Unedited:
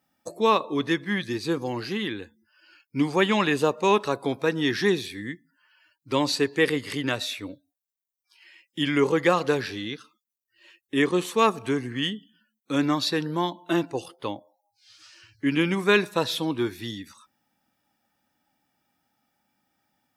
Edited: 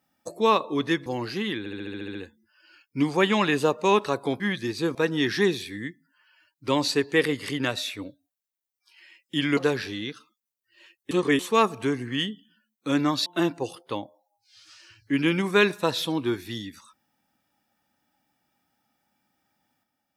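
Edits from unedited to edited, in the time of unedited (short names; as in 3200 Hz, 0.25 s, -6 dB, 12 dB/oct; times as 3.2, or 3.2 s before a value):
1.06–1.61 move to 4.39
2.14 stutter 0.07 s, 9 plays
9.01–9.41 cut
10.95–11.23 reverse
13.1–13.59 cut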